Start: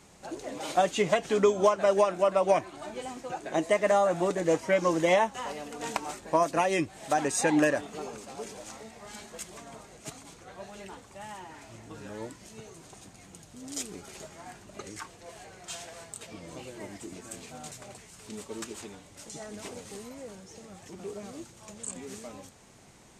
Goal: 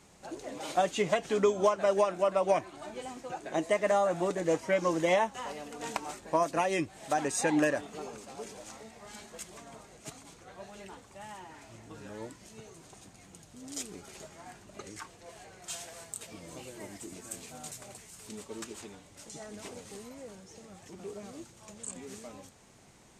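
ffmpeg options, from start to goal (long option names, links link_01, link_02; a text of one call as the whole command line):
ffmpeg -i in.wav -filter_complex "[0:a]asettb=1/sr,asplit=3[link_01][link_02][link_03];[link_01]atrim=end=15.624[link_04];[link_02]atrim=start=15.62:end=18.33,asetpts=PTS-STARTPTS,afade=type=in:duration=0.004:curve=qsin,afade=type=out:start_time=2.706:duration=0.004:curve=qsin,highshelf=frequency=8400:gain=10.5[link_05];[link_03]atrim=start=18.326[link_06];[link_04][link_05]acrossfade=duration=0.004:curve1=hsin:curve2=qsin[link_07];[link_07][link_06]acrossfade=duration=0.004:curve1=qsin:curve2=hsin,volume=-3dB" out.wav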